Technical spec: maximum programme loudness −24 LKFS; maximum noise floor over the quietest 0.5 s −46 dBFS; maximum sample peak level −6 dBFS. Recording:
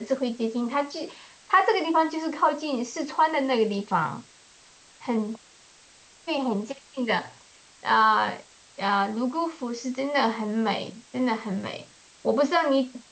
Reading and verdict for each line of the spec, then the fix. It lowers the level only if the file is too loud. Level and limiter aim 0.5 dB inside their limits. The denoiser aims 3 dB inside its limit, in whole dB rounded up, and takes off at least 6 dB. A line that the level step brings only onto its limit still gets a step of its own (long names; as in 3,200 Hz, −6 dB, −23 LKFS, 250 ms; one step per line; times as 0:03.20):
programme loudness −26.0 LKFS: in spec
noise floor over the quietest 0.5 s −54 dBFS: in spec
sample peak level −7.0 dBFS: in spec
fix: no processing needed